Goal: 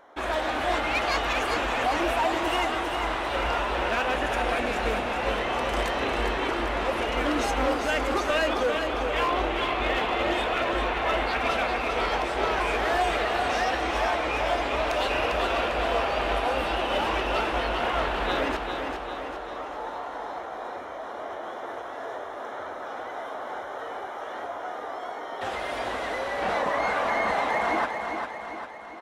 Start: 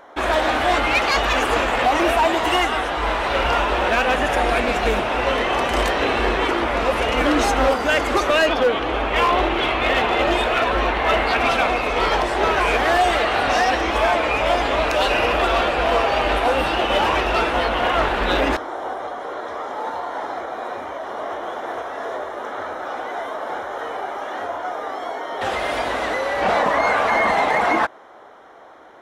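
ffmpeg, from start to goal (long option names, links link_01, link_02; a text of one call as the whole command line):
ffmpeg -i in.wav -af "aecho=1:1:399|798|1197|1596|1995|2394|2793:0.501|0.271|0.146|0.0789|0.0426|0.023|0.0124,volume=-8.5dB" out.wav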